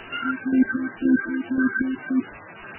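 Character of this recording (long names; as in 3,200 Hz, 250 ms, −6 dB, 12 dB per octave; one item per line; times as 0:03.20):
phaser sweep stages 4, 2.2 Hz, lowest notch 550–1,200 Hz
chopped level 1.9 Hz, depth 65%, duty 45%
a quantiser's noise floor 6 bits, dither triangular
MP3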